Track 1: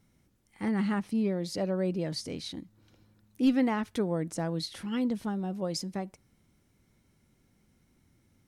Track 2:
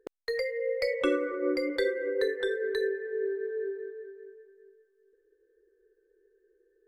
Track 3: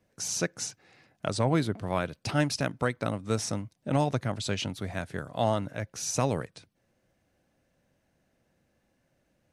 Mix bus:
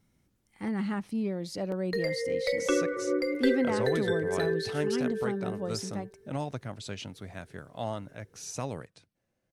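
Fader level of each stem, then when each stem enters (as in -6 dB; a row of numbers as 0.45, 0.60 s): -2.5, 0.0, -8.0 dB; 0.00, 1.65, 2.40 s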